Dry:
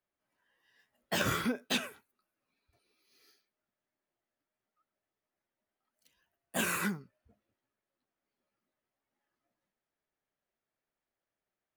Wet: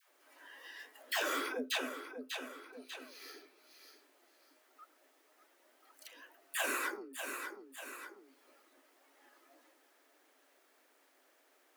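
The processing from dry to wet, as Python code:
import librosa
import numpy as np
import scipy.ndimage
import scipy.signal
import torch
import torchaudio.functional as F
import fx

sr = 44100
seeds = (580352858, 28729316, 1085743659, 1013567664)

p1 = scipy.signal.sosfilt(scipy.signal.cheby1(8, 1.0, 260.0, 'highpass', fs=sr, output='sos'), x)
p2 = fx.dispersion(p1, sr, late='lows', ms=118.0, hz=590.0)
p3 = p2 + fx.echo_feedback(p2, sr, ms=592, feedback_pct=22, wet_db=-14.0, dry=0)
p4 = fx.band_squash(p3, sr, depth_pct=70)
y = p4 * librosa.db_to_amplitude(1.0)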